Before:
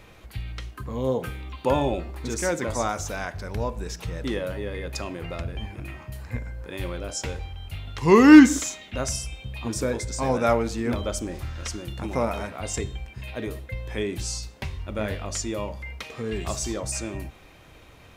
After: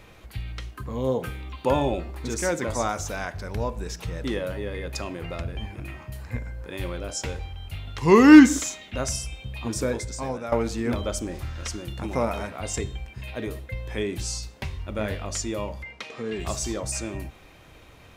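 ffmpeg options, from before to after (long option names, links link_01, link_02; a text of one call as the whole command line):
ffmpeg -i in.wav -filter_complex "[0:a]asplit=3[link_01][link_02][link_03];[link_01]afade=type=out:start_time=15.83:duration=0.02[link_04];[link_02]highpass=160,lowpass=7100,afade=type=in:start_time=15.83:duration=0.02,afade=type=out:start_time=16.38:duration=0.02[link_05];[link_03]afade=type=in:start_time=16.38:duration=0.02[link_06];[link_04][link_05][link_06]amix=inputs=3:normalize=0,asplit=2[link_07][link_08];[link_07]atrim=end=10.52,asetpts=PTS-STARTPTS,afade=type=out:start_time=9.92:duration=0.6:silence=0.16788[link_09];[link_08]atrim=start=10.52,asetpts=PTS-STARTPTS,afade=type=in:duration=0.004:curve=hsin:silence=0.16788[link_10];[link_09][link_10]concat=n=2:v=0:a=1" out.wav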